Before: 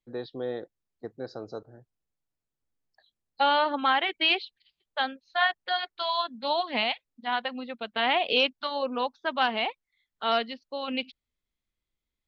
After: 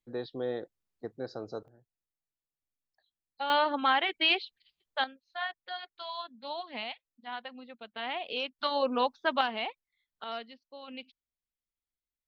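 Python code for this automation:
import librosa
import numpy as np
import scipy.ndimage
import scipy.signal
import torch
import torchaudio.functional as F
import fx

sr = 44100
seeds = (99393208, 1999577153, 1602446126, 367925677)

y = fx.gain(x, sr, db=fx.steps((0.0, -1.0), (1.68, -11.0), (3.5, -2.0), (5.04, -11.0), (8.59, 1.0), (9.41, -6.0), (10.24, -13.0)))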